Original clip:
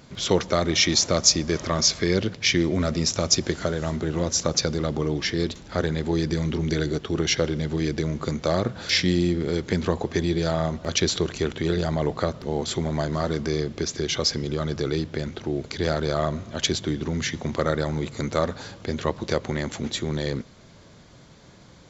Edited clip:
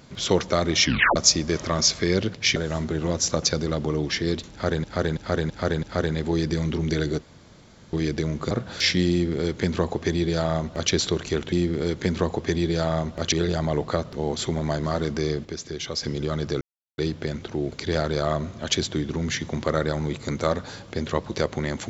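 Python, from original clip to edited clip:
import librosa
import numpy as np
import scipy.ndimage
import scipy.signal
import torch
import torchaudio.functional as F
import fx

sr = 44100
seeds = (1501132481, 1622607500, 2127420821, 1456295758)

y = fx.edit(x, sr, fx.tape_stop(start_s=0.84, length_s=0.32),
    fx.cut(start_s=2.56, length_s=1.12),
    fx.repeat(start_s=5.63, length_s=0.33, count=5),
    fx.room_tone_fill(start_s=7.02, length_s=0.71),
    fx.cut(start_s=8.31, length_s=0.29),
    fx.duplicate(start_s=9.19, length_s=1.8, to_s=11.61),
    fx.clip_gain(start_s=13.74, length_s=0.58, db=-6.0),
    fx.insert_silence(at_s=14.9, length_s=0.37), tone=tone)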